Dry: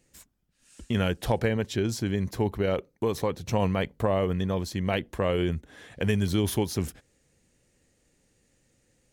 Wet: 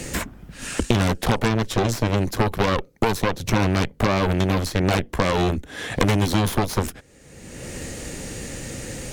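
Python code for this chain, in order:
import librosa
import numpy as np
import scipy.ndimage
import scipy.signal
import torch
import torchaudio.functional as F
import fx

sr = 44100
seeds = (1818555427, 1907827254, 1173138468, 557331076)

y = fx.cheby_harmonics(x, sr, harmonics=(5, 8), levels_db=(-14, -6), full_scale_db=-11.5)
y = fx.band_squash(y, sr, depth_pct=100)
y = y * librosa.db_to_amplitude(-1.0)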